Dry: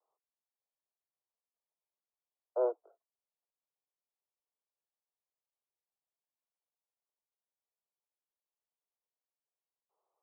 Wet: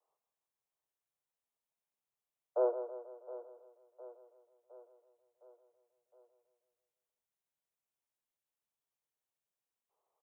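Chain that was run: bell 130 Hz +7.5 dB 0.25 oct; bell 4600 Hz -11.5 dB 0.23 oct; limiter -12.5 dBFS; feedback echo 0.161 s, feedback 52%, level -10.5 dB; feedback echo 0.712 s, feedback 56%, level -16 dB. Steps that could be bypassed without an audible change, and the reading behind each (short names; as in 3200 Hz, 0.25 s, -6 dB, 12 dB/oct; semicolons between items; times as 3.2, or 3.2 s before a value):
bell 130 Hz: input band starts at 340 Hz; bell 4600 Hz: input band ends at 1000 Hz; limiter -12.5 dBFS: input peak -21.5 dBFS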